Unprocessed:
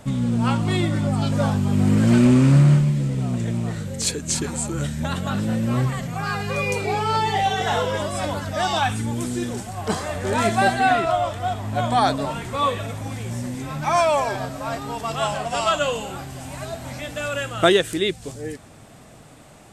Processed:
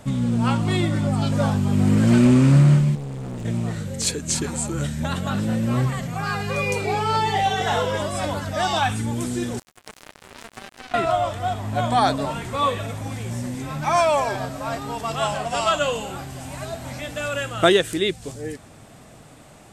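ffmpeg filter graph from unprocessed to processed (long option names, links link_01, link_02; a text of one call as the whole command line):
ffmpeg -i in.wav -filter_complex "[0:a]asettb=1/sr,asplit=3[link_01][link_02][link_03];[link_01]atrim=end=2.954[link_04];[link_02]atrim=start=2.95:end=3.45,asetpts=PTS-STARTPTS,afade=type=in:duration=0.004:curve=qsin,afade=type=out:start_time=0.496:duration=0.004:curve=qsin,volume=27dB,asoftclip=hard,volume=-27dB,tremolo=f=140:d=0.519[link_05];[link_03]atrim=start=3.446[link_06];[link_04][link_05]acrossfade=duration=0.004:curve1=hsin:curve2=qsin[link_07];[link_07][link_06]acrossfade=duration=0.004:curve1=qsin:curve2=hsin,asettb=1/sr,asplit=3[link_08][link_09][link_10];[link_08]atrim=end=9.594[link_11];[link_09]atrim=start=9.59:end=10.94,asetpts=PTS-STARTPTS,afade=type=in:duration=0.004:curve=qsin,afade=type=out:start_time=1.346:duration=0.004:curve=qsin,highpass=160,acompressor=threshold=-29dB:ratio=6:attack=3.2:release=140:knee=1:detection=peak,acrusher=bits=3:mix=0:aa=0.5[link_12];[link_10]atrim=start=10.936[link_13];[link_11][link_12]acrossfade=duration=0.004:curve1=hsin:curve2=qsin[link_14];[link_14][link_13]acrossfade=duration=0.004:curve1=qsin:curve2=hsin" out.wav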